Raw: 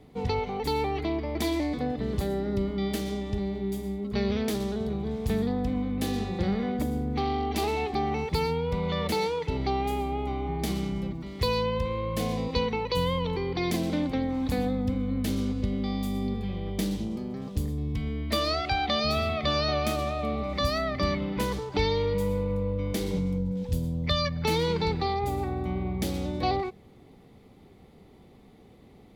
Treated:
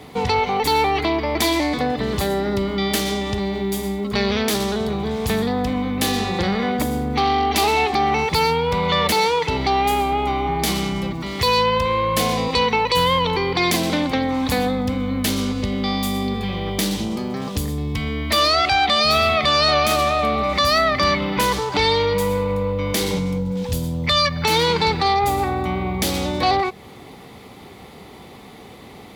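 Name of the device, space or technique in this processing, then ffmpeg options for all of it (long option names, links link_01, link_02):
mastering chain: -af "highpass=52,equalizer=frequency=1000:width_type=o:width=0.83:gain=3.5,acompressor=threshold=-37dB:ratio=1.5,asoftclip=type=tanh:threshold=-21.5dB,tiltshelf=frequency=710:gain=-5.5,alimiter=level_in=22dB:limit=-1dB:release=50:level=0:latency=1,volume=-7dB"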